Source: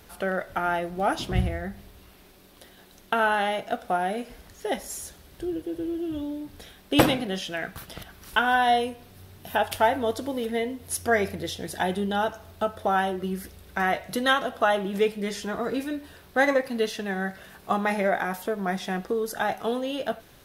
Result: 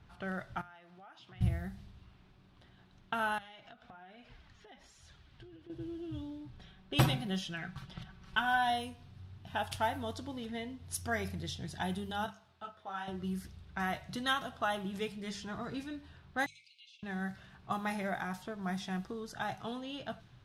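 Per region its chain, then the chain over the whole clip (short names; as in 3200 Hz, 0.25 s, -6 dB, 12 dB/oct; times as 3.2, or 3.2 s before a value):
0.61–1.41 HPF 1200 Hz 6 dB/oct + compressor 10:1, threshold -40 dBFS
3.38–5.7 flange 1.2 Hz, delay 1.2 ms, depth 3.7 ms, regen +49% + bell 3000 Hz +8 dB 3 oct + compressor 16:1, threshold -38 dBFS
6.5–8.7 high shelf 6400 Hz -5 dB + comb 5.3 ms, depth 54%
12.26–13.08 HPF 620 Hz 6 dB/oct + detuned doubles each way 24 cents
16.46–17.03 brick-wall FIR band-pass 2100–9900 Hz + compressor 2:1, threshold -49 dBFS
whole clip: graphic EQ 125/250/500/2000 Hz +11/-4/-12/-5 dB; low-pass opened by the level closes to 2400 Hz, open at -24.5 dBFS; notches 50/100/150/200 Hz; gain -6 dB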